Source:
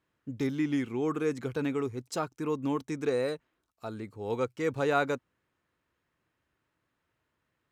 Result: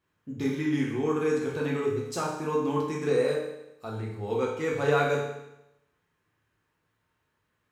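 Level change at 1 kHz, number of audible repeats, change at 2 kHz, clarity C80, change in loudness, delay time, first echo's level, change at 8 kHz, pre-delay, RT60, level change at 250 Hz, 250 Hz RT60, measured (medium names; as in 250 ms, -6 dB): +3.0 dB, no echo, +3.5 dB, 6.0 dB, +3.5 dB, no echo, no echo, +4.0 dB, 7 ms, 0.90 s, +1.5 dB, 0.90 s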